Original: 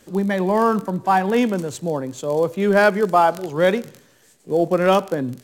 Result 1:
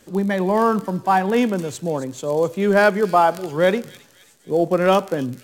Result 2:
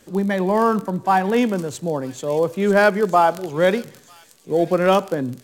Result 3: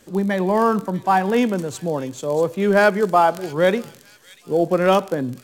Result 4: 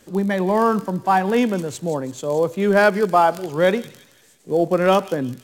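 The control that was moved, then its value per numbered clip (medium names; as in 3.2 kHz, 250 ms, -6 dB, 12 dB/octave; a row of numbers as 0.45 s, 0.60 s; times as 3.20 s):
feedback echo behind a high-pass, time: 267 ms, 943 ms, 641 ms, 169 ms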